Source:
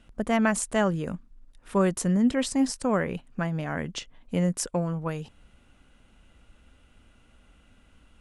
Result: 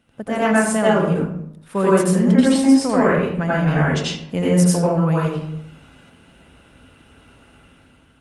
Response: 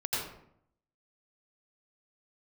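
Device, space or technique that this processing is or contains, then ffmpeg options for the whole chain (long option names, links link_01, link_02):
far-field microphone of a smart speaker: -filter_complex "[1:a]atrim=start_sample=2205[link_01];[0:a][link_01]afir=irnorm=-1:irlink=0,highpass=94,dynaudnorm=framelen=210:gausssize=7:maxgain=8dB" -ar 48000 -c:a libopus -b:a 32k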